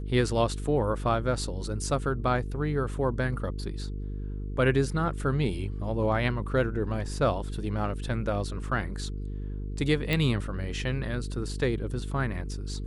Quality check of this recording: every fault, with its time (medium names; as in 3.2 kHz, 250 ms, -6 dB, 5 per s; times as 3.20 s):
buzz 50 Hz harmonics 9 -34 dBFS
10.13 s: pop